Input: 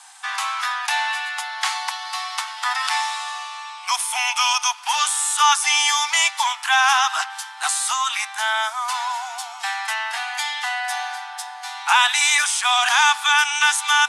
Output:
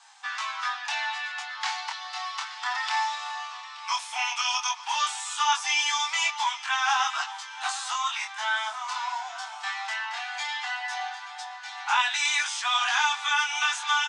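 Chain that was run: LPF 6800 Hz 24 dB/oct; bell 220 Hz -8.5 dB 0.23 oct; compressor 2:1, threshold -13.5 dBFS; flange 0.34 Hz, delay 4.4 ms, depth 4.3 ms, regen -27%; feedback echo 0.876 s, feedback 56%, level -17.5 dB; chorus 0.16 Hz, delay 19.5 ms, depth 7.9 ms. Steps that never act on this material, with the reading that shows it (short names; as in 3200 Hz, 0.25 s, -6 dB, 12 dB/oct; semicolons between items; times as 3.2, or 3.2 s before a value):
bell 220 Hz: input band starts at 640 Hz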